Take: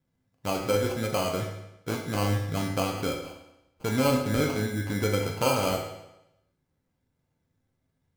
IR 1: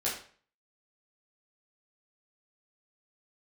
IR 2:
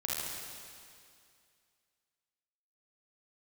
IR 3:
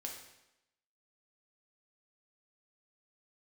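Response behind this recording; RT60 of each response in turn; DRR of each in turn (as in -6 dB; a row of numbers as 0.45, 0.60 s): 3; 0.45, 2.3, 0.90 s; -7.0, -6.0, 0.0 dB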